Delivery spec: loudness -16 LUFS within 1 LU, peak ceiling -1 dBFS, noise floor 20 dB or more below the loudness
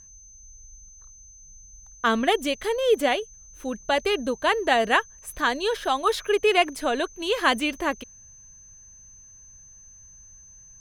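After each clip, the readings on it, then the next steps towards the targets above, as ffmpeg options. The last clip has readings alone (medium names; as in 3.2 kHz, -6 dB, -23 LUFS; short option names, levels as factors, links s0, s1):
steady tone 6.2 kHz; tone level -47 dBFS; loudness -24.0 LUFS; peak level -6.0 dBFS; loudness target -16.0 LUFS
-> -af "bandreject=f=6200:w=30"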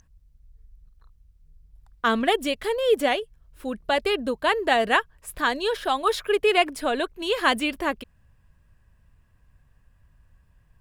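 steady tone not found; loudness -24.0 LUFS; peak level -6.0 dBFS; loudness target -16.0 LUFS
-> -af "volume=2.51,alimiter=limit=0.891:level=0:latency=1"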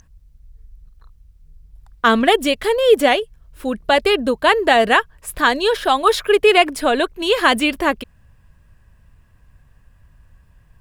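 loudness -16.0 LUFS; peak level -1.0 dBFS; noise floor -53 dBFS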